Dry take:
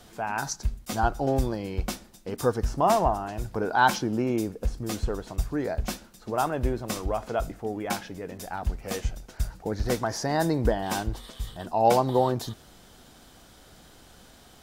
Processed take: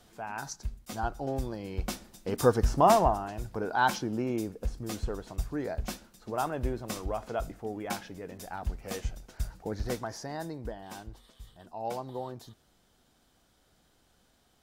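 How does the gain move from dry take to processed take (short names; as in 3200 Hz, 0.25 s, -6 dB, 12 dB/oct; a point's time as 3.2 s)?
1.45 s -8 dB
2.3 s +1.5 dB
2.82 s +1.5 dB
3.42 s -5 dB
9.77 s -5 dB
10.59 s -15 dB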